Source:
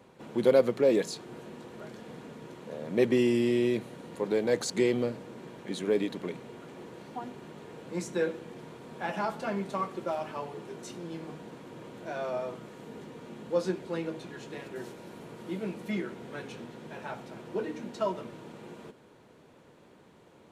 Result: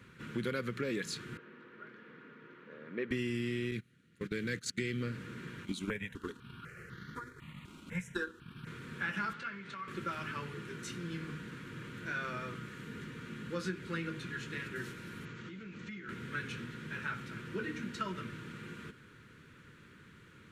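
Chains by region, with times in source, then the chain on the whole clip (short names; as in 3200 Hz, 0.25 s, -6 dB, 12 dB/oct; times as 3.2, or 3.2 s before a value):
1.37–3.11 HPF 390 Hz + tape spacing loss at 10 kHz 42 dB
3.71–5.01 gate -34 dBFS, range -21 dB + bell 820 Hz -14.5 dB 0.96 oct
5.65–8.67 bell 340 Hz -3.5 dB 0.7 oct + transient shaper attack +7 dB, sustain -7 dB + step phaser 4 Hz 470–2500 Hz
9.33–9.88 compressor 5:1, threshold -36 dBFS + BPF 130–4600 Hz + bell 240 Hz -8.5 dB 2.2 oct
15.25–16.09 Chebyshev low-pass 6900 Hz, order 4 + compressor 16:1, threshold -42 dBFS
whole clip: EQ curve 110 Hz 0 dB, 460 Hz -14 dB, 730 Hz -29 dB, 1400 Hz +2 dB, 5000 Hz -7 dB; compressor 4:1, threshold -40 dBFS; gain +7 dB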